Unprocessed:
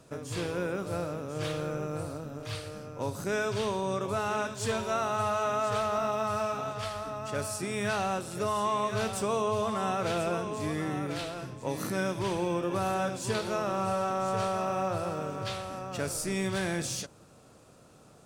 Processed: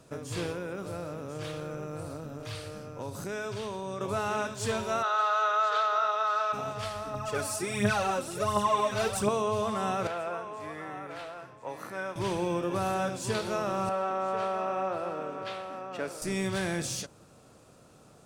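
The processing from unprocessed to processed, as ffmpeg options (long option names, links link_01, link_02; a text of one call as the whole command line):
ffmpeg -i in.wav -filter_complex "[0:a]asettb=1/sr,asplit=3[link_01][link_02][link_03];[link_01]atrim=end=0.524[link_04];[link_02]atrim=start=0.52:end=4.01,asetpts=PTS-STARTPTS,afade=type=in:duration=0.004:curve=qsin,afade=type=out:start_time=3.486:duration=0.004:curve=qsin,acompressor=threshold=-34dB:ratio=2.5:attack=3.2:release=140:knee=1:detection=peak[link_05];[link_03]atrim=start=4.006[link_06];[link_04][link_05]acrossfade=duration=0.004:curve1=hsin:curve2=qsin[link_07];[link_07][link_06]acrossfade=duration=0.004:curve1=qsin:curve2=hsin,asplit=3[link_08][link_09][link_10];[link_08]afade=type=out:start_time=5.02:duration=0.02[link_11];[link_09]highpass=frequency=480:width=0.5412,highpass=frequency=480:width=1.3066,equalizer=frequency=720:width_type=q:width=4:gain=-5,equalizer=frequency=1400:width_type=q:width=4:gain=10,equalizer=frequency=2500:width_type=q:width=4:gain=-3,equalizer=frequency=3700:width_type=q:width=4:gain=7,equalizer=frequency=5500:width_type=q:width=4:gain=-4,lowpass=frequency=6100:width=0.5412,lowpass=frequency=6100:width=1.3066,afade=type=in:start_time=5.02:duration=0.02,afade=type=out:start_time=6.52:duration=0.02[link_12];[link_10]afade=type=in:start_time=6.52:duration=0.02[link_13];[link_11][link_12][link_13]amix=inputs=3:normalize=0,asettb=1/sr,asplit=3[link_14][link_15][link_16];[link_14]atrim=end=7.144[link_17];[link_15]atrim=start=7.14:end=9.29,asetpts=PTS-STARTPTS,afade=type=in:duration=0.004:curve=qsin,afade=type=out:start_time=2.146:duration=0.004:curve=qsin,aphaser=in_gain=1:out_gain=1:delay=3.9:decay=0.64:speed=1.4:type=triangular[link_18];[link_16]atrim=start=9.286[link_19];[link_17][link_18]acrossfade=duration=0.004:curve1=hsin:curve2=qsin[link_20];[link_20][link_19]acrossfade=duration=0.004:curve1=qsin:curve2=hsin,asettb=1/sr,asplit=3[link_21][link_22][link_23];[link_21]atrim=end=10.074[link_24];[link_22]atrim=start=10.07:end=12.16,asetpts=PTS-STARTPTS,afade=type=in:duration=0.004:curve=qsin,afade=type=out:start_time=2.086:duration=0.004:curve=qsin,acrossover=split=540 2200:gain=0.178 1 0.224[link_25][link_26][link_27];[link_25][link_26][link_27]amix=inputs=3:normalize=0[link_28];[link_23]atrim=start=12.156[link_29];[link_24][link_28]acrossfade=duration=0.004:curve1=hsin:curve2=qsin[link_30];[link_30][link_29]acrossfade=duration=0.004:curve1=qsin:curve2=hsin,asettb=1/sr,asplit=3[link_31][link_32][link_33];[link_31]atrim=end=13.894[link_34];[link_32]atrim=start=13.89:end=16.22,asetpts=PTS-STARTPTS,afade=type=in:duration=0.004:curve=qsin,afade=type=out:start_time=2.326:duration=0.004:curve=qsin,acrossover=split=210 3400:gain=0.0891 1 0.224[link_35][link_36][link_37];[link_35][link_36][link_37]amix=inputs=3:normalize=0[link_38];[link_33]atrim=start=16.216[link_39];[link_34][link_38]acrossfade=duration=0.004:curve1=hsin:curve2=qsin[link_40];[link_40][link_39]acrossfade=duration=0.004:curve1=qsin:curve2=hsin" out.wav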